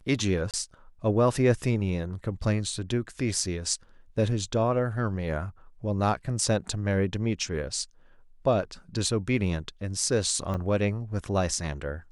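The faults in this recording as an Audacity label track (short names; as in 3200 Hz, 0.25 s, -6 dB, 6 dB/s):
0.510000	0.540000	gap 27 ms
10.540000	10.550000	gap 5.4 ms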